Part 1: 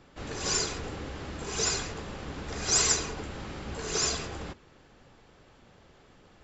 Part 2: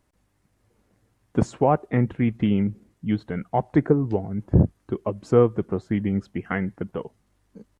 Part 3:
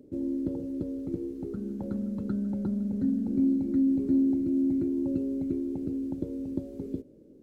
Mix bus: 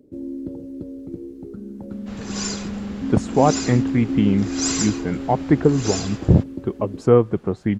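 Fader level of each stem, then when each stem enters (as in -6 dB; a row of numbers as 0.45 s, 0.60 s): 0.0 dB, +3.0 dB, 0.0 dB; 1.90 s, 1.75 s, 0.00 s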